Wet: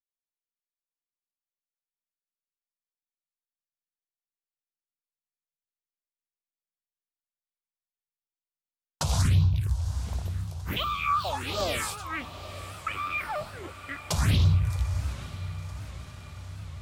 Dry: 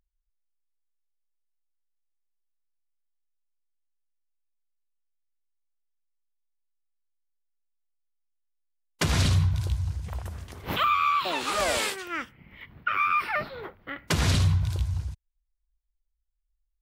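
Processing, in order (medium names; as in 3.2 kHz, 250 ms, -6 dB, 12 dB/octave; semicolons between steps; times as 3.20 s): rattle on loud lows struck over -22 dBFS, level -36 dBFS; gate -41 dBFS, range -38 dB; phase shifter stages 4, 1.4 Hz, lowest notch 300–2000 Hz; echo that smears into a reverb 910 ms, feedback 63%, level -13.5 dB; warped record 78 rpm, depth 160 cents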